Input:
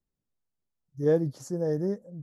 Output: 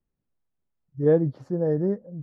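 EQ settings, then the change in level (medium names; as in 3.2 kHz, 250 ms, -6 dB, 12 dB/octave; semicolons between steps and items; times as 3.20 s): distance through air 420 m; +5.0 dB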